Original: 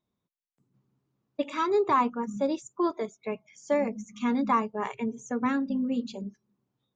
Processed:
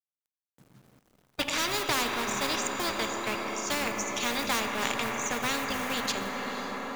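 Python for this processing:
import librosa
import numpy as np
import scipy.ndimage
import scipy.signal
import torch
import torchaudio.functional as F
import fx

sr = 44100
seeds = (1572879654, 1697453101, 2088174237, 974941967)

p1 = fx.law_mismatch(x, sr, coded='A')
p2 = p1 + fx.echo_diffused(p1, sr, ms=517, feedback_pct=60, wet_db=-16, dry=0)
p3 = fx.rev_schroeder(p2, sr, rt60_s=3.6, comb_ms=26, drr_db=12.5)
p4 = fx.spectral_comp(p3, sr, ratio=4.0)
y = F.gain(torch.from_numpy(p4), 4.5).numpy()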